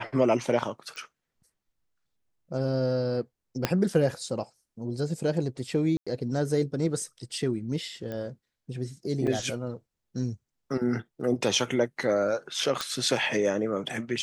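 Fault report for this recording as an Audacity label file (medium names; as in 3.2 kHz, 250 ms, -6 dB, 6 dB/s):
0.960000	0.960000	pop
3.650000	3.650000	pop -8 dBFS
5.970000	6.070000	dropout 96 ms
8.120000	8.120000	pop -23 dBFS
9.270000	9.270000	dropout 3.8 ms
12.810000	12.810000	pop -14 dBFS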